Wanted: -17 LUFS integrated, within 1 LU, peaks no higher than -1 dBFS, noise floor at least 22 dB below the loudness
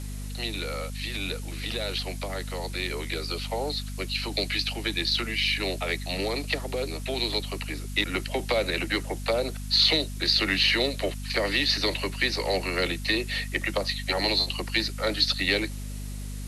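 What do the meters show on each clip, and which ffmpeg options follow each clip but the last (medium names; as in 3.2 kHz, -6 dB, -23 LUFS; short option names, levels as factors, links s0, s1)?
hum 50 Hz; highest harmonic 250 Hz; hum level -33 dBFS; noise floor -35 dBFS; noise floor target -49 dBFS; loudness -26.5 LUFS; peak level -9.0 dBFS; loudness target -17.0 LUFS
-> -af "bandreject=f=50:t=h:w=6,bandreject=f=100:t=h:w=6,bandreject=f=150:t=h:w=6,bandreject=f=200:t=h:w=6,bandreject=f=250:t=h:w=6"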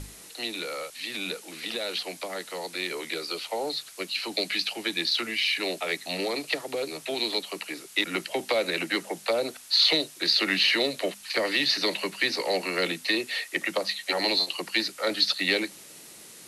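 hum not found; noise floor -48 dBFS; noise floor target -49 dBFS
-> -af "afftdn=nr=6:nf=-48"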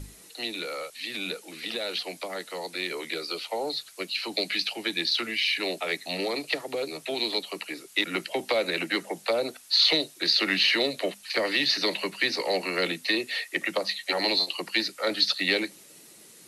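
noise floor -52 dBFS; loudness -27.0 LUFS; peak level -9.0 dBFS; loudness target -17.0 LUFS
-> -af "volume=3.16,alimiter=limit=0.891:level=0:latency=1"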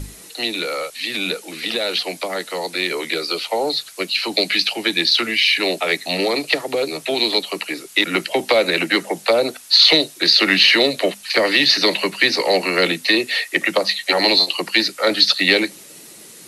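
loudness -17.0 LUFS; peak level -1.0 dBFS; noise floor -42 dBFS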